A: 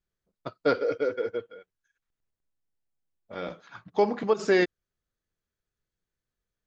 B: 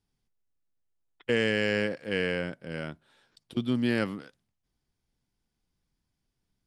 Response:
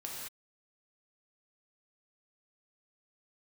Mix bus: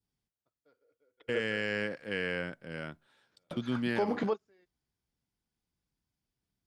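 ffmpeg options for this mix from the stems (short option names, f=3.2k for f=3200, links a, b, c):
-filter_complex "[0:a]volume=1.5dB[a];[1:a]highpass=41,adynamicequalizer=threshold=0.00891:dfrequency=1500:dqfactor=0.89:tfrequency=1500:tqfactor=0.89:attack=5:release=100:ratio=0.375:range=2.5:mode=boostabove:tftype=bell,volume=-5.5dB,asplit=2[b][c];[c]apad=whole_len=294144[d];[a][d]sidechaingate=range=-47dB:threshold=-57dB:ratio=16:detection=peak[e];[e][b]amix=inputs=2:normalize=0,alimiter=limit=-20.5dB:level=0:latency=1:release=109"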